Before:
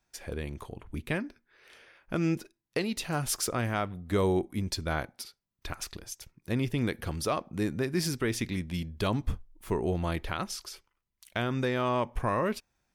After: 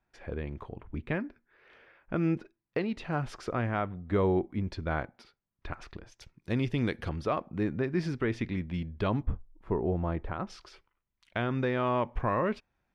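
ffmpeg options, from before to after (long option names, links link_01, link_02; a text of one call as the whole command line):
ffmpeg -i in.wav -af "asetnsamples=nb_out_samples=441:pad=0,asendcmd='6.19 lowpass f 4700;7.09 lowpass f 2300;9.23 lowpass f 1200;10.47 lowpass f 2700',lowpass=2100" out.wav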